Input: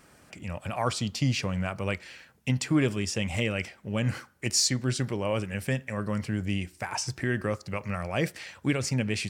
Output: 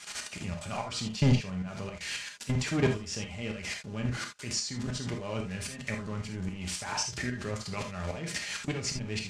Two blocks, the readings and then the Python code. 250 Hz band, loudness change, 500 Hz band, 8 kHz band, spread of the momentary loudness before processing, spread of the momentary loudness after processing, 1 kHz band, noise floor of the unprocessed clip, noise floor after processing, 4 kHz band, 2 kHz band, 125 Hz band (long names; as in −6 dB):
−4.0 dB, −4.0 dB, −5.0 dB, −3.5 dB, 8 LU, 9 LU, −4.0 dB, −59 dBFS, −45 dBFS, −2.5 dB, −3.5 dB, −3.0 dB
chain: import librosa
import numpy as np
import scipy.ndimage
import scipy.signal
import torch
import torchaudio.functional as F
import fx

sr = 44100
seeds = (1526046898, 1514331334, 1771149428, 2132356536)

y = x + 0.5 * 10.0 ** (-25.5 / 20.0) * np.diff(np.sign(x), prepend=np.sign(x[:1]))
y = fx.bass_treble(y, sr, bass_db=5, treble_db=-9)
y = fx.level_steps(y, sr, step_db=21)
y = fx.leveller(y, sr, passes=2)
y = fx.tremolo_shape(y, sr, shape='saw_up', hz=3.7, depth_pct=85)
y = scipy.signal.sosfilt(scipy.signal.butter(4, 7300.0, 'lowpass', fs=sr, output='sos'), y)
y = fx.rev_gated(y, sr, seeds[0], gate_ms=100, shape='flat', drr_db=2.5)
y = fx.rider(y, sr, range_db=3, speed_s=2.0)
y = fx.high_shelf(y, sr, hz=5500.0, db=6.0)
y = y + 0.33 * np.pad(y, (int(4.9 * sr / 1000.0), 0))[:len(y)]